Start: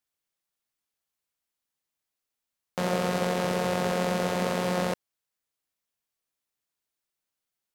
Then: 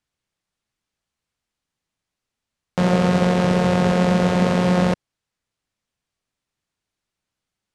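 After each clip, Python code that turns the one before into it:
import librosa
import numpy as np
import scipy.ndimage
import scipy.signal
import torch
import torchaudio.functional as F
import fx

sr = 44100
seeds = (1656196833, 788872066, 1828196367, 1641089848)

y = scipy.signal.sosfilt(scipy.signal.bessel(4, 7500.0, 'lowpass', norm='mag', fs=sr, output='sos'), x)
y = fx.bass_treble(y, sr, bass_db=9, treble_db=-2)
y = y * librosa.db_to_amplitude(6.5)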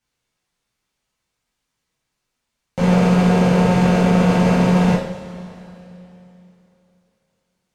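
y = fx.tube_stage(x, sr, drive_db=15.0, bias=0.2)
y = fx.rev_double_slope(y, sr, seeds[0], early_s=0.5, late_s=3.2, knee_db=-18, drr_db=-6.5)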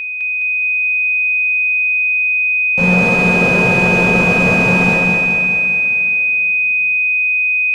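y = x + 10.0 ** (-20.0 / 20.0) * np.sin(2.0 * np.pi * 2500.0 * np.arange(len(x)) / sr)
y = fx.echo_feedback(y, sr, ms=208, feedback_pct=58, wet_db=-3.5)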